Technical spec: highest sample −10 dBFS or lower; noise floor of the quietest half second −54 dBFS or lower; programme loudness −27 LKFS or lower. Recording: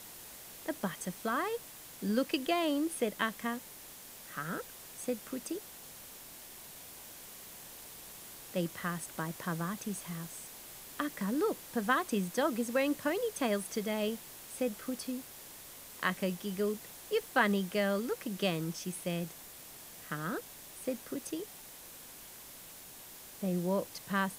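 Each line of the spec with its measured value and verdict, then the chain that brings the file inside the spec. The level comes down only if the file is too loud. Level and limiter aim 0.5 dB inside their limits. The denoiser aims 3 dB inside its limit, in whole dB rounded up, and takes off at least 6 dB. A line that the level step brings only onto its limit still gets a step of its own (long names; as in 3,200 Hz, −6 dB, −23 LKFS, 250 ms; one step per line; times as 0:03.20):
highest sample −13.0 dBFS: in spec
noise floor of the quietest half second −51 dBFS: out of spec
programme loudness −35.0 LKFS: in spec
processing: broadband denoise 6 dB, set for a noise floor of −51 dBFS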